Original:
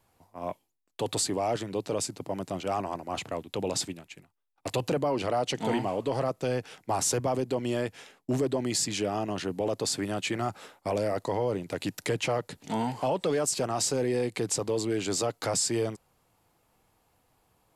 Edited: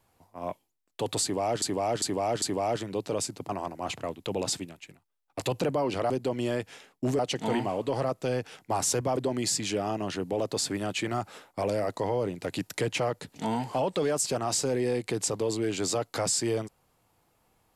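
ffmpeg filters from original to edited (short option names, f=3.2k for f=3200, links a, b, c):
-filter_complex "[0:a]asplit=8[a][b][c][d][e][f][g][h];[a]atrim=end=1.622[i];[b]atrim=start=1.218:end=1.622[j];[c]atrim=start=1.218:end=1.622[k];[d]atrim=start=1.218:end=2.292[l];[e]atrim=start=2.768:end=5.382[m];[f]atrim=start=7.358:end=8.452[n];[g]atrim=start=5.378:end=7.362[o];[h]atrim=start=8.448[p];[i][j]acrossfade=d=0.004:c1=hsin:c2=hsin[q];[q][k]acrossfade=d=0.004:c1=hsin:c2=hsin[r];[r][l]acrossfade=d=0.004:c1=hsin:c2=hsin[s];[s][m]acrossfade=d=0.004:c1=hsin:c2=hsin[t];[t][n]acrossfade=d=0.004:c1=hsin:c2=hsin[u];[u][o]acrossfade=d=0.004:c1=hsin:c2=hsin[v];[v][p]acrossfade=d=0.004:c1=hsin:c2=hsin"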